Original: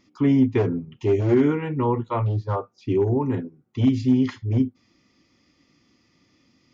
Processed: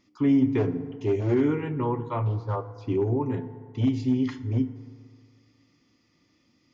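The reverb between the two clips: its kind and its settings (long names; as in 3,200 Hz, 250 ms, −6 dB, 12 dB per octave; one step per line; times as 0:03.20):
feedback delay network reverb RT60 2 s, low-frequency decay 0.95×, high-frequency decay 0.5×, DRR 11.5 dB
level −4.5 dB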